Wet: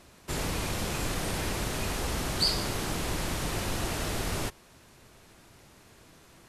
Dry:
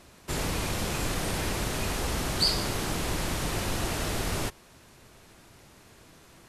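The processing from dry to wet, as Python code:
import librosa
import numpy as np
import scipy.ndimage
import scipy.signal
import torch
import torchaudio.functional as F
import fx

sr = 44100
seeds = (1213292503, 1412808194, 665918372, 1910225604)

y = fx.quant_dither(x, sr, seeds[0], bits=12, dither='none', at=(1.71, 4.11))
y = y * librosa.db_to_amplitude(-1.5)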